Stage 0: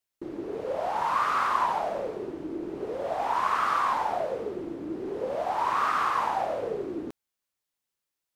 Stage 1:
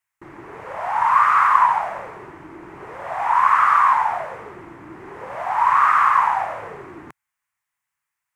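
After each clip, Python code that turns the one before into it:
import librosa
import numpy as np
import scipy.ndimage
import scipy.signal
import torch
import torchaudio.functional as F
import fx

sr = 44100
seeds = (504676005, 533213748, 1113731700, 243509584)

y = fx.graphic_eq_10(x, sr, hz=(125, 250, 500, 1000, 2000, 4000, 8000), db=(6, -7, -9, 11, 12, -8, 4))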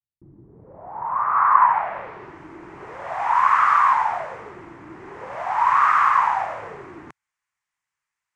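y = fx.filter_sweep_lowpass(x, sr, from_hz=190.0, to_hz=6800.0, start_s=0.49, end_s=2.42, q=1.1)
y = F.gain(torch.from_numpy(y), -1.5).numpy()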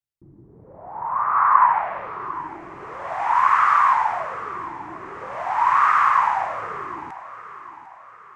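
y = fx.echo_feedback(x, sr, ms=750, feedback_pct=46, wet_db=-15.5)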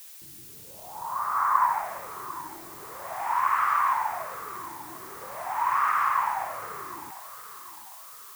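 y = fx.dmg_noise_colour(x, sr, seeds[0], colour='blue', level_db=-39.0)
y = F.gain(torch.from_numpy(y), -7.5).numpy()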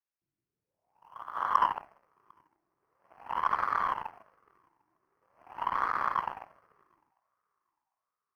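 y = fx.cheby_harmonics(x, sr, harmonics=(7,), levels_db=(-17,), full_scale_db=-8.5)
y = np.convolve(y, np.full(12, 1.0 / 12))[:len(y)]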